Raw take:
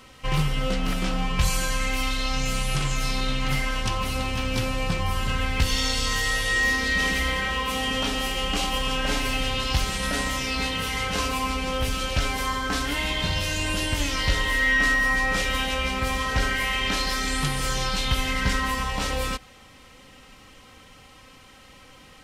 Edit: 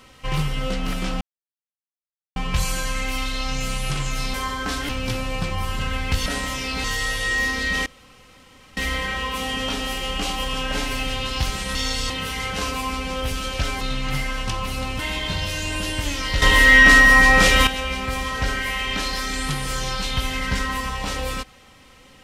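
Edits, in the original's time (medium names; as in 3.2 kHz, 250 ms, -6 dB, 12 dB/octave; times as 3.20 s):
1.21 s: insert silence 1.15 s
3.19–4.37 s: swap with 12.38–12.93 s
5.74–6.09 s: swap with 10.09–10.67 s
7.11 s: insert room tone 0.91 s
14.36–15.61 s: gain +10 dB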